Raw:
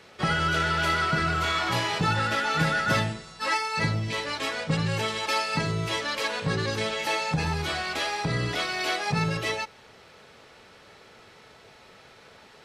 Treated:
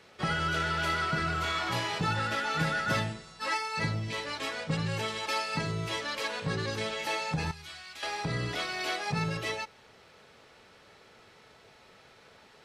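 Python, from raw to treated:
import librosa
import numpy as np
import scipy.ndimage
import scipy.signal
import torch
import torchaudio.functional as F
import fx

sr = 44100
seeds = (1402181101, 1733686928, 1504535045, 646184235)

y = fx.tone_stack(x, sr, knobs='5-5-5', at=(7.51, 8.03))
y = F.gain(torch.from_numpy(y), -5.0).numpy()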